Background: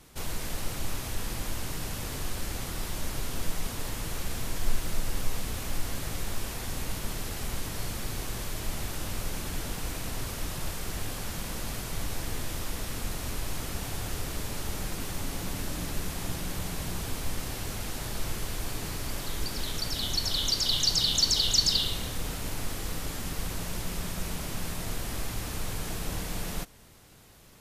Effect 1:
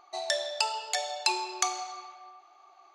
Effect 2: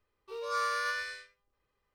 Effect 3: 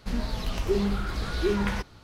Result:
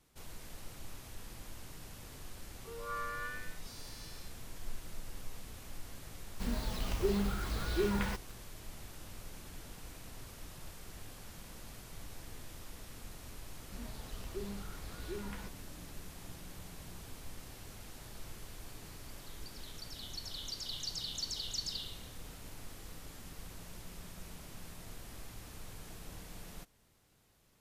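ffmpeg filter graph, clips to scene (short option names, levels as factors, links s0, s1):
-filter_complex "[3:a]asplit=2[s0][s1];[0:a]volume=0.178[s2];[2:a]acrossover=split=3200[s3][s4];[s4]adelay=790[s5];[s3][s5]amix=inputs=2:normalize=0[s6];[s0]acrusher=bits=6:mix=0:aa=0.000001[s7];[s6]atrim=end=1.94,asetpts=PTS-STARTPTS,volume=0.398,afade=t=in:d=0.004:c=hsin,afade=t=out:st=1.936:d=0.004:c=hsin,adelay=2360[s8];[s7]atrim=end=2.03,asetpts=PTS-STARTPTS,volume=0.473,afade=t=in:d=0.004:c=hsin,afade=t=out:st=2.026:d=0.004:c=hsin,adelay=279594S[s9];[s1]atrim=end=2.03,asetpts=PTS-STARTPTS,volume=0.133,afade=t=in:d=0.004:c=hsin,afade=t=out:st=2.026:d=0.004:c=hsin,adelay=13660[s10];[s2][s8][s9][s10]amix=inputs=4:normalize=0"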